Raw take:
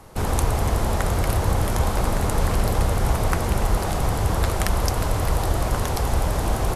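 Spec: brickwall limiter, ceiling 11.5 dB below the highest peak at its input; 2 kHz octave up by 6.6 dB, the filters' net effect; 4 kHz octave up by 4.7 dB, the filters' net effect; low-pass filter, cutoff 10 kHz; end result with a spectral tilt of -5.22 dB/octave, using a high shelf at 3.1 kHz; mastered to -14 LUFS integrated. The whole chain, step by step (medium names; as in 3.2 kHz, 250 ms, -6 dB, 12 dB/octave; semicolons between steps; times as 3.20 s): low-pass 10 kHz; peaking EQ 2 kHz +8.5 dB; treble shelf 3.1 kHz -6 dB; peaking EQ 4 kHz +8 dB; trim +10 dB; peak limiter -2.5 dBFS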